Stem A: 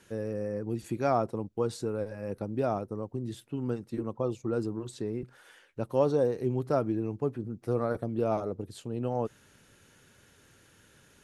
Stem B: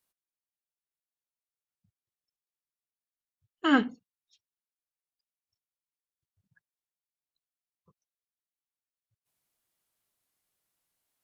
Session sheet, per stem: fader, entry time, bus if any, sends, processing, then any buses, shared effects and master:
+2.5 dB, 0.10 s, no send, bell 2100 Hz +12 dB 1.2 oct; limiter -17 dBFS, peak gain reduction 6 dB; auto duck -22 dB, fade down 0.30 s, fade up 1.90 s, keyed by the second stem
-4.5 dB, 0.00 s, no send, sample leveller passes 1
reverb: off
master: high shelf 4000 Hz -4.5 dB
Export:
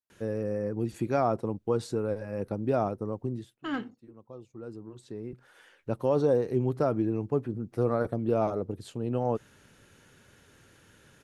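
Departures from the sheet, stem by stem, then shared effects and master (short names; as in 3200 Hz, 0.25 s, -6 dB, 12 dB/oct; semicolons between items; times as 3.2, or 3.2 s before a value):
stem A: missing bell 2100 Hz +12 dB 1.2 oct; stem B -4.5 dB -> -12.0 dB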